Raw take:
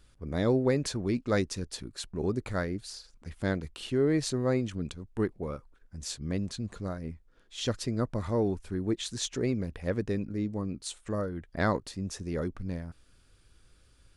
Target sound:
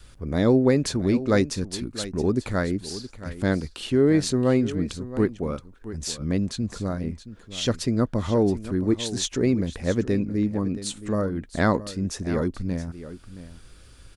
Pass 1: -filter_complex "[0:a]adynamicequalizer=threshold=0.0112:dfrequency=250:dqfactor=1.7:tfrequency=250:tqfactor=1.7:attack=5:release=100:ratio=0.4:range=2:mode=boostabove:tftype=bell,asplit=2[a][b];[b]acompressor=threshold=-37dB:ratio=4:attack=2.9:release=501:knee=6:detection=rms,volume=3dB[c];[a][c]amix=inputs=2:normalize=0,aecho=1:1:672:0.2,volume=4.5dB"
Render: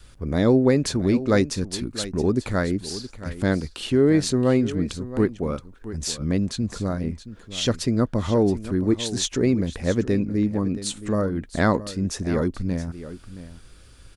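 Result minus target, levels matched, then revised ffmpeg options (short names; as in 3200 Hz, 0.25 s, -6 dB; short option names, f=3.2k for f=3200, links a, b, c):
compressor: peak gain reduction -8.5 dB
-filter_complex "[0:a]adynamicequalizer=threshold=0.0112:dfrequency=250:dqfactor=1.7:tfrequency=250:tqfactor=1.7:attack=5:release=100:ratio=0.4:range=2:mode=boostabove:tftype=bell,asplit=2[a][b];[b]acompressor=threshold=-48.5dB:ratio=4:attack=2.9:release=501:knee=6:detection=rms,volume=3dB[c];[a][c]amix=inputs=2:normalize=0,aecho=1:1:672:0.2,volume=4.5dB"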